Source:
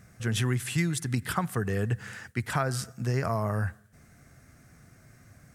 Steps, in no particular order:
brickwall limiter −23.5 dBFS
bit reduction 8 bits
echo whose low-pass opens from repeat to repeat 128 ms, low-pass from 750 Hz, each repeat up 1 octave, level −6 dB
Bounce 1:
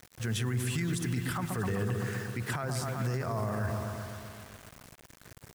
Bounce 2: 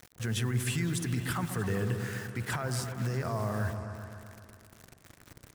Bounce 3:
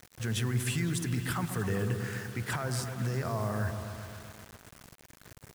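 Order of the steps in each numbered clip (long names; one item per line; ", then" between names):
echo whose low-pass opens from repeat to repeat, then bit reduction, then brickwall limiter
bit reduction, then brickwall limiter, then echo whose low-pass opens from repeat to repeat
brickwall limiter, then echo whose low-pass opens from repeat to repeat, then bit reduction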